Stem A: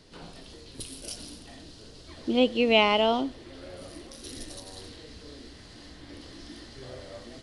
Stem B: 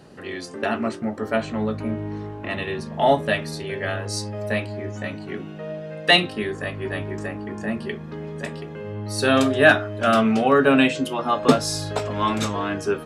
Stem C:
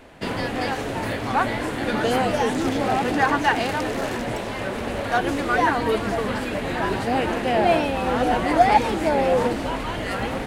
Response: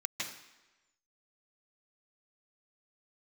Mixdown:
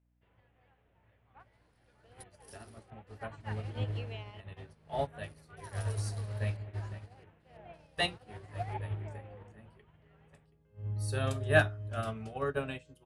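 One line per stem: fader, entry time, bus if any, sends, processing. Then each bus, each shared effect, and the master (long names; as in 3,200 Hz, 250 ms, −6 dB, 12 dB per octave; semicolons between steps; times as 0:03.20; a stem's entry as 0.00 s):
−4.0 dB, 1.40 s, no send, downward compressor 12 to 1, threshold −25 dBFS, peak gain reduction 11 dB; gate pattern "xxxxx.xxx.x.x" 90 BPM
−11.0 dB, 1.90 s, no send, low-shelf EQ 360 Hz +10 dB
−15.0 dB, 0.00 s, no send, Butterworth low-pass 3,300 Hz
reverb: not used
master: graphic EQ with 15 bands 100 Hz +10 dB, 250 Hz −12 dB, 10,000 Hz +10 dB; mains hum 60 Hz, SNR 16 dB; expander for the loud parts 2.5 to 1, over −38 dBFS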